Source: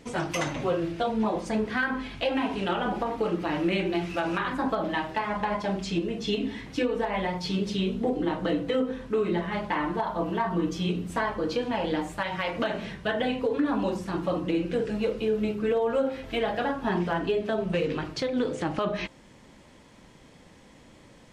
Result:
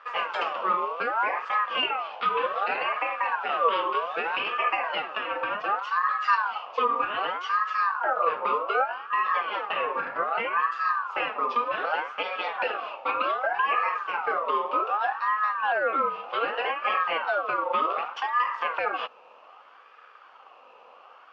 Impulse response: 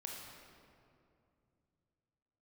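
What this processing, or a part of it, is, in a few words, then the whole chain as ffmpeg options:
voice changer toy: -filter_complex "[0:a]asettb=1/sr,asplit=3[a][b][c];[a]atrim=end=6.004[d];[b]atrim=start=6:end=6.58,asetpts=PTS-STARTPTS,afade=t=in:d=0.004:c=qsin,afade=t=out:st=0.576:d=0.004:c=qsin,aecho=1:1:5.4:0.99,atrim=end_sample=25578[e];[c]atrim=start=6.576[f];[d][e]acrossfade=d=0.004:c1=hsin:c2=qsin[g];[g][f]acrossfade=d=0.004:c1=qsin:c2=hsin,aeval=exprs='val(0)*sin(2*PI*1100*n/s+1100*0.35/0.65*sin(2*PI*0.65*n/s))':c=same,highpass=470,equalizer=f=500:t=q:w=4:g=8,equalizer=f=780:t=q:w=4:g=5,equalizer=f=1.2k:t=q:w=4:g=9,equalizer=f=1.9k:t=q:w=4:g=-5,equalizer=f=2.7k:t=q:w=4:g=9,equalizer=f=3.9k:t=q:w=4:g=-9,lowpass=f=4.1k:w=0.5412,lowpass=f=4.1k:w=1.3066"

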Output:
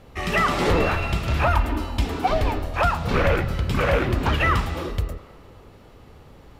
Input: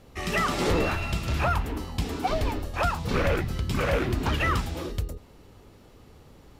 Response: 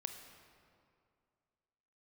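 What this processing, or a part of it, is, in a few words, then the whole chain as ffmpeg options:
filtered reverb send: -filter_complex "[0:a]asettb=1/sr,asplit=3[a][b][c];[a]atrim=end=1.464[d];[b]atrim=start=1.46:end=2.06,asetpts=PTS-STARTPTS,afade=t=in:d=0.004:c=qsin,afade=t=out:st=0.596:d=0.004:c=qsin,aecho=1:1:3.3:0.65,atrim=end_sample=26460[e];[c]atrim=start=2.056[f];[d][e]acrossfade=d=0.004:c1=hsin:c2=qsin[g];[g][f]acrossfade=d=0.004:c1=qsin:c2=hsin,lowshelf=f=480:g=5,asplit=2[h][i];[i]highpass=470,lowpass=4.1k[j];[1:a]atrim=start_sample=2205[k];[j][k]afir=irnorm=-1:irlink=0,volume=0.5dB[l];[h][l]amix=inputs=2:normalize=0"

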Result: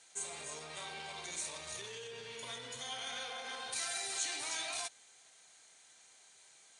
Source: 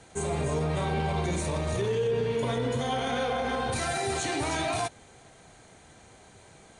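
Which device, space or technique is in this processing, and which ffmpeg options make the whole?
piezo pickup straight into a mixer: -filter_complex "[0:a]lowpass=7.2k,aderivative,asplit=3[a][b][c];[a]afade=t=out:st=1.6:d=0.02[d];[b]asubboost=boost=3:cutoff=170,afade=t=in:st=1.6:d=0.02,afade=t=out:st=3.29:d=0.02[e];[c]afade=t=in:st=3.29:d=0.02[f];[d][e][f]amix=inputs=3:normalize=0,volume=2.5dB"

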